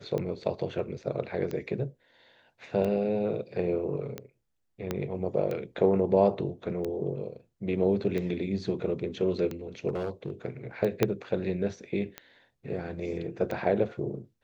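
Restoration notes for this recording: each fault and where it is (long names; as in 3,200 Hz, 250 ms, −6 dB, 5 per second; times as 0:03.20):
scratch tick 45 rpm −21 dBFS
0:00.79: drop-out 2.2 ms
0:04.91: click −16 dBFS
0:09.88–0:10.30: clipping −27 dBFS
0:11.03: click −9 dBFS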